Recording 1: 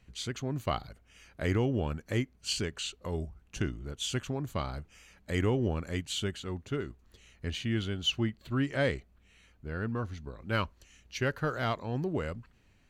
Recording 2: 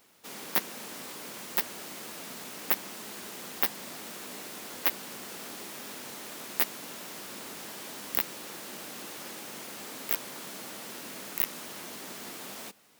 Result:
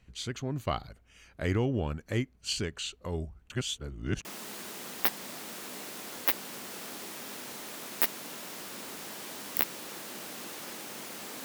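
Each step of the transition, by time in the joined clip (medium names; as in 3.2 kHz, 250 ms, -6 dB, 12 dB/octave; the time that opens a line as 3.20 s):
recording 1
3.50–4.25 s: reverse
4.25 s: go over to recording 2 from 2.83 s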